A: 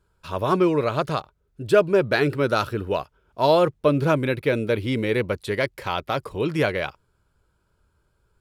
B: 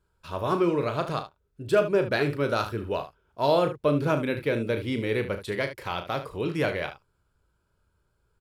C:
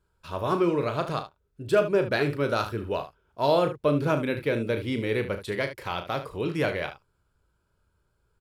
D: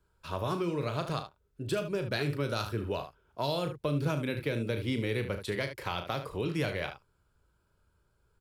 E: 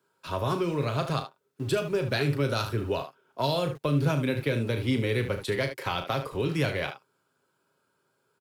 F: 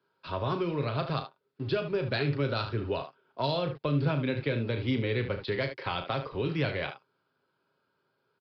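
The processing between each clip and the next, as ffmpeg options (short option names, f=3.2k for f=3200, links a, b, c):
-af "aecho=1:1:35|74:0.355|0.251,volume=-5dB"
-af anull
-filter_complex "[0:a]acrossover=split=170|3000[a][b][c];[b]acompressor=threshold=-31dB:ratio=6[d];[a][d][c]amix=inputs=3:normalize=0"
-filter_complex "[0:a]acrossover=split=170|1700[a][b][c];[a]aeval=exprs='val(0)*gte(abs(val(0)),0.00376)':c=same[d];[d][b][c]amix=inputs=3:normalize=0,aecho=1:1:7.5:0.31,volume=4dB"
-af "aresample=11025,aresample=44100,volume=-2.5dB"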